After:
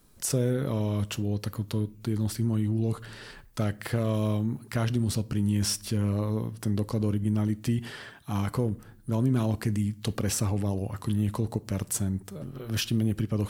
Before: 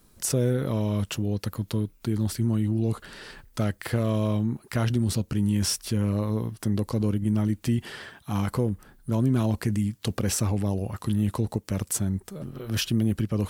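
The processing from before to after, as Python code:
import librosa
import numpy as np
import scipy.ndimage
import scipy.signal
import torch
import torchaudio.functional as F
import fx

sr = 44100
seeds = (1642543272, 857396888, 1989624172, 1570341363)

y = fx.high_shelf(x, sr, hz=9400.0, db=6.5, at=(4.13, 4.64))
y = fx.room_shoebox(y, sr, seeds[0], volume_m3=650.0, walls='furnished', distance_m=0.3)
y = F.gain(torch.from_numpy(y), -2.0).numpy()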